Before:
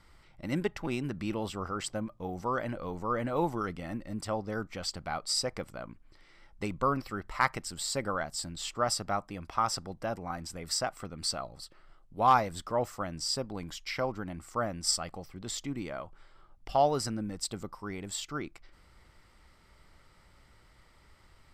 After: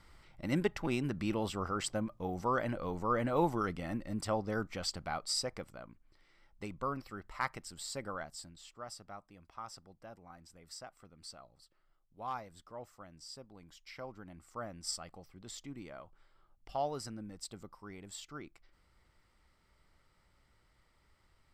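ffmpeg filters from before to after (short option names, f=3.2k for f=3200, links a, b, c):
-af "volume=6.5dB,afade=t=out:st=4.63:d=1.26:silence=0.398107,afade=t=out:st=8.22:d=0.41:silence=0.375837,afade=t=in:st=13.59:d=1.17:silence=0.446684"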